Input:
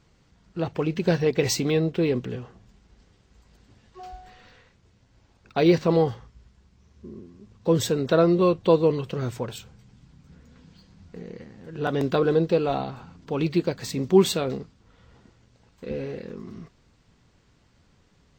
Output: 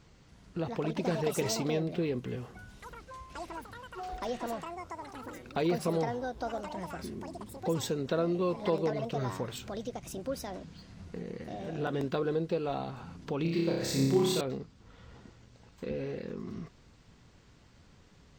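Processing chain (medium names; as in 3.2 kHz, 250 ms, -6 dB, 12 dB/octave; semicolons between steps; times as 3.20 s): compression 2:1, threshold -40 dBFS, peak gain reduction 15.5 dB; ever faster or slower copies 286 ms, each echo +6 st, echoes 3, each echo -6 dB; 13.42–14.41 s: flutter echo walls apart 5.1 m, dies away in 1 s; trim +2 dB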